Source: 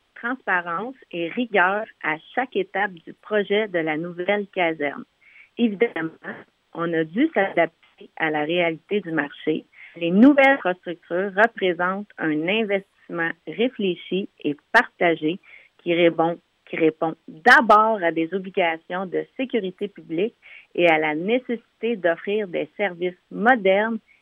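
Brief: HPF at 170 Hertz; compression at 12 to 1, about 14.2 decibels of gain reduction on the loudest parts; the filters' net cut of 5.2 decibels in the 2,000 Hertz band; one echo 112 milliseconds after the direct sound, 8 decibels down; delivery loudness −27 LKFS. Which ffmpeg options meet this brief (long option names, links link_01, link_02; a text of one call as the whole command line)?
ffmpeg -i in.wav -af "highpass=170,equalizer=frequency=2000:width_type=o:gain=-6.5,acompressor=threshold=-23dB:ratio=12,aecho=1:1:112:0.398,volume=2.5dB" out.wav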